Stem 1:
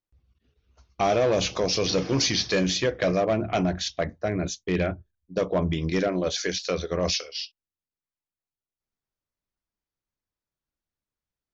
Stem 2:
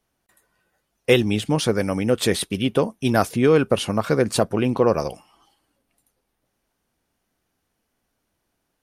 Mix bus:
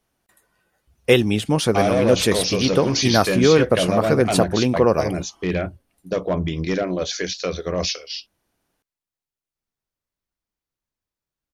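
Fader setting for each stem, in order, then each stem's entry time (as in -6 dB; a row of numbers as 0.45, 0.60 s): +2.0, +1.5 dB; 0.75, 0.00 s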